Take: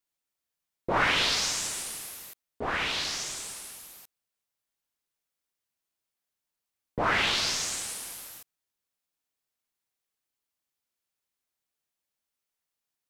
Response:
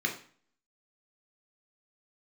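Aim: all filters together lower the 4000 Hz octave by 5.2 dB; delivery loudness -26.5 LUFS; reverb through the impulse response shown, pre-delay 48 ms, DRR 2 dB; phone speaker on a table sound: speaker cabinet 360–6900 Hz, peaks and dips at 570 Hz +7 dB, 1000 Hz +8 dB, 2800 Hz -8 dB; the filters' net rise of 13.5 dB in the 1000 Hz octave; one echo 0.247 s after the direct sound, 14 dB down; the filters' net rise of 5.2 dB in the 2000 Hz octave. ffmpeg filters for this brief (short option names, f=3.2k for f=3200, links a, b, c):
-filter_complex "[0:a]equalizer=f=1k:t=o:g=9,equalizer=f=2k:t=o:g=5.5,equalizer=f=4k:t=o:g=-6,aecho=1:1:247:0.2,asplit=2[a][b];[1:a]atrim=start_sample=2205,adelay=48[c];[b][c]afir=irnorm=-1:irlink=0,volume=-9.5dB[d];[a][d]amix=inputs=2:normalize=0,highpass=f=360:w=0.5412,highpass=f=360:w=1.3066,equalizer=f=570:t=q:w=4:g=7,equalizer=f=1k:t=q:w=4:g=8,equalizer=f=2.8k:t=q:w=4:g=-8,lowpass=f=6.9k:w=0.5412,lowpass=f=6.9k:w=1.3066,volume=-7.5dB"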